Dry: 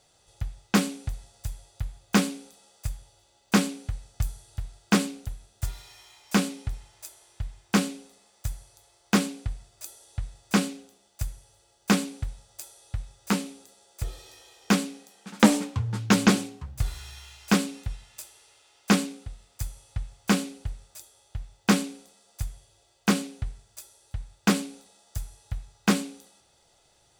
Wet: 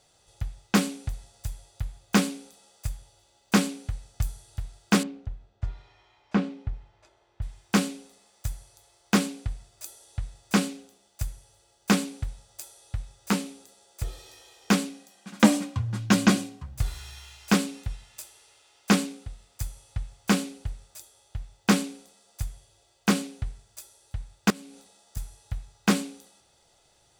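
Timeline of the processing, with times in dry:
0:05.03–0:07.42: head-to-tape spacing loss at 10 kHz 34 dB
0:14.89–0:16.72: notch comb filter 440 Hz
0:24.50–0:25.17: downward compressor 3 to 1, threshold −45 dBFS

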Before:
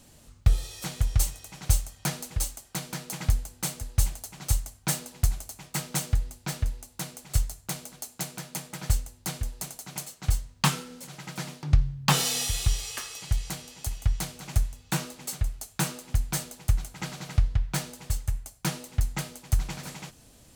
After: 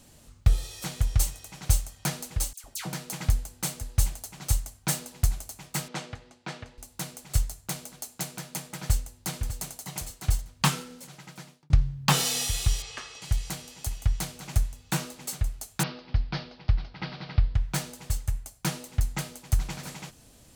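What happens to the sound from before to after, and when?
0:02.53–0:02.93: all-pass dispersion lows, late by 109 ms, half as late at 1,600 Hz
0:05.88–0:06.78: band-pass filter 220–3,700 Hz
0:08.68–0:09.81: delay throw 600 ms, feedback 15%, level −10.5 dB
0:10.82–0:11.70: fade out
0:12.82–0:13.22: high-frequency loss of the air 110 metres
0:15.83–0:17.55: Butterworth low-pass 5,100 Hz 72 dB per octave

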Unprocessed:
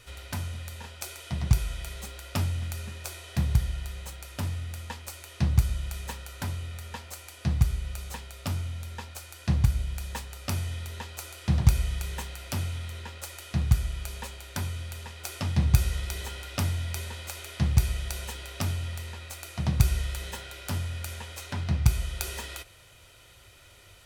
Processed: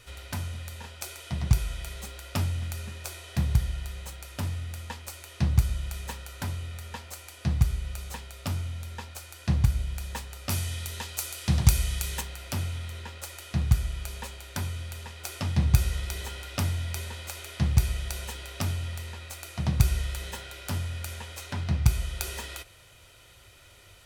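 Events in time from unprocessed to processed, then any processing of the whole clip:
0:10.50–0:12.21: high-shelf EQ 3,100 Hz +9.5 dB

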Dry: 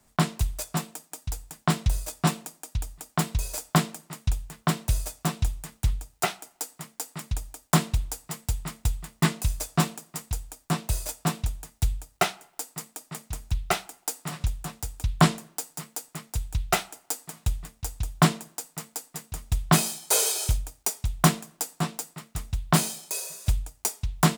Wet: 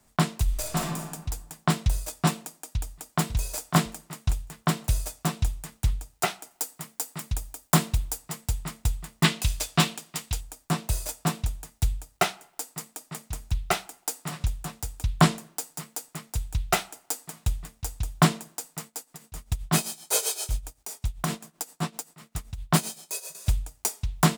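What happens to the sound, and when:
0:00.44–0:01.07: thrown reverb, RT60 1.2 s, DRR −1 dB
0:02.57–0:03.23: delay throw 550 ms, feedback 30%, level −9 dB
0:06.51–0:08.18: high-shelf EQ 11,000 Hz +6.5 dB
0:09.24–0:10.41: parametric band 3,200 Hz +9.5 dB 1.5 octaves
0:18.86–0:23.35: amplitude tremolo 7.7 Hz, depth 77%

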